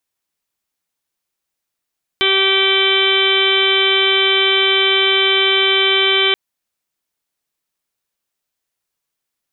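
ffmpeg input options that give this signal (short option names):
-f lavfi -i "aevalsrc='0.119*sin(2*PI*387*t)+0.0335*sin(2*PI*774*t)+0.0562*sin(2*PI*1161*t)+0.0596*sin(2*PI*1548*t)+0.0447*sin(2*PI*1935*t)+0.133*sin(2*PI*2322*t)+0.0237*sin(2*PI*2709*t)+0.168*sin(2*PI*3096*t)+0.0891*sin(2*PI*3483*t)+0.0422*sin(2*PI*3870*t)':d=4.13:s=44100"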